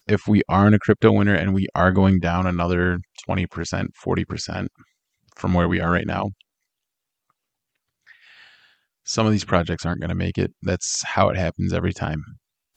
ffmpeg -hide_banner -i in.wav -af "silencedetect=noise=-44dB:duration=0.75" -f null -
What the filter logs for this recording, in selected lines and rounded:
silence_start: 6.41
silence_end: 8.08 | silence_duration: 1.67